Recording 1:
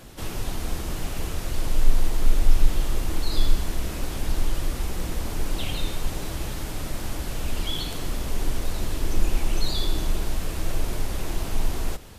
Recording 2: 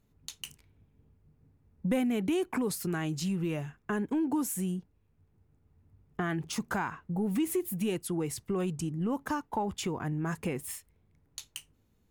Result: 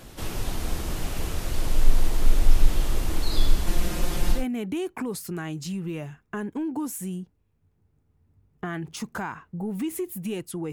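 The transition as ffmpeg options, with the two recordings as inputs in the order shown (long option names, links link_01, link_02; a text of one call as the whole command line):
ffmpeg -i cue0.wav -i cue1.wav -filter_complex "[0:a]asettb=1/sr,asplit=3[link_01][link_02][link_03];[link_01]atrim=end=3.664[link_04];[link_02]atrim=start=3.66:end=4.45,asetpts=PTS-STARTPTS,afade=type=in:duration=0.004:curve=qsin,afade=type=out:start_time=0.786:duration=0.004:curve=qsin,aecho=1:1:5.7:0.89,atrim=end_sample=34839[link_05];[link_03]atrim=start=4.446[link_06];[link_04][link_05]acrossfade=duration=0.004:curve1=hsin:curve2=qsin[link_07];[link_07][link_06]acrossfade=duration=0.004:curve1=qsin:curve2=hsin,apad=whole_dur=10.72,atrim=end=10.72,atrim=end=4.45,asetpts=PTS-STARTPTS[link_08];[1:a]atrim=start=1.87:end=8.28,asetpts=PTS-STARTPTS[link_09];[link_08][link_09]acrossfade=duration=0.14:curve1=tri:curve2=tri" out.wav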